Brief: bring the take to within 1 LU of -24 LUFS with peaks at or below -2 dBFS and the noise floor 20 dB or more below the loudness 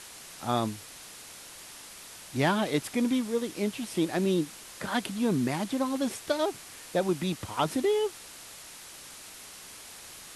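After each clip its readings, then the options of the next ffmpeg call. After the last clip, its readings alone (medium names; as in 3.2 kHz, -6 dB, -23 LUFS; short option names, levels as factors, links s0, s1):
noise floor -47 dBFS; noise floor target -50 dBFS; loudness -29.5 LUFS; peak level -14.0 dBFS; loudness target -24.0 LUFS
-> -af "afftdn=nr=6:nf=-47"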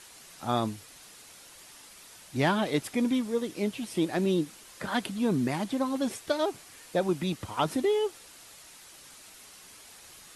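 noise floor -52 dBFS; loudness -30.0 LUFS; peak level -14.0 dBFS; loudness target -24.0 LUFS
-> -af "volume=2"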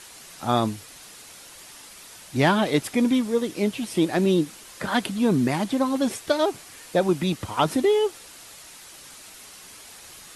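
loudness -23.5 LUFS; peak level -8.0 dBFS; noise floor -45 dBFS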